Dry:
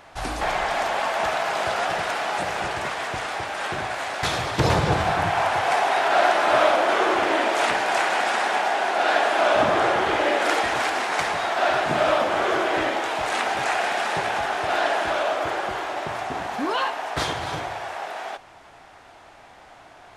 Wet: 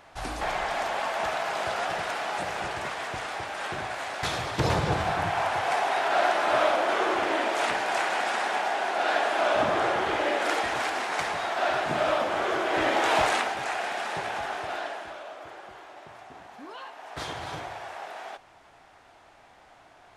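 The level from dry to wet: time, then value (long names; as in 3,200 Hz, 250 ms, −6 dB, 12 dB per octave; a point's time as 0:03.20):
0:12.63 −5 dB
0:13.18 +4.5 dB
0:13.55 −7 dB
0:14.55 −7 dB
0:15.20 −17.5 dB
0:16.83 −17.5 dB
0:17.38 −7 dB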